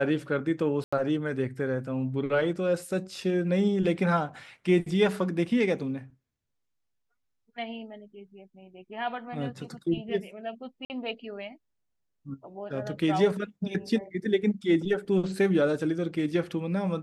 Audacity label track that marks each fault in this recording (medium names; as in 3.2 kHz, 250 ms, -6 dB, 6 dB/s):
0.840000	0.930000	dropout 85 ms
10.850000	10.900000	dropout 49 ms